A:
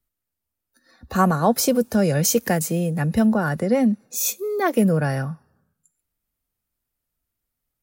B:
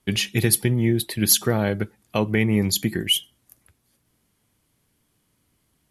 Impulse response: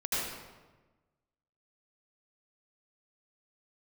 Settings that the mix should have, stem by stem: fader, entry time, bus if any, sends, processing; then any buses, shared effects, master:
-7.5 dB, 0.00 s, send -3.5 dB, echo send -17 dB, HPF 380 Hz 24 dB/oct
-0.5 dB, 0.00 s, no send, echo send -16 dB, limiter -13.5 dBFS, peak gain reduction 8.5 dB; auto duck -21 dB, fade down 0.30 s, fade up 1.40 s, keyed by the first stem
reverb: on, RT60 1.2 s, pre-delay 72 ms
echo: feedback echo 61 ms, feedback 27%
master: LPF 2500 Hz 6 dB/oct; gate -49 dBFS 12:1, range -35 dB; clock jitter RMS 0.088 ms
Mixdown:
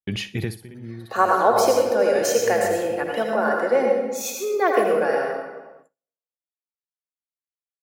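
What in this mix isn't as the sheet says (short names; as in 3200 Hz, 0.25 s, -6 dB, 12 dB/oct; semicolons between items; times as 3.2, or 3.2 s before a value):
stem A -7.5 dB -> -1.5 dB; master: missing clock jitter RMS 0.088 ms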